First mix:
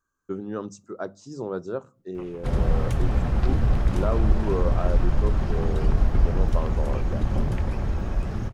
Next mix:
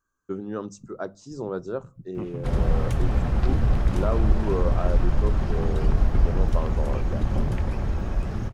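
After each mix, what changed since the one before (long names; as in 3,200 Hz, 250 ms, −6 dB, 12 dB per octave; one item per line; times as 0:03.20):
second voice: remove high-pass filter 770 Hz 12 dB per octave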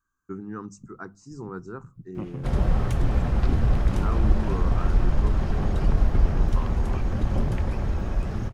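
first voice: add phaser with its sweep stopped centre 1,400 Hz, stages 4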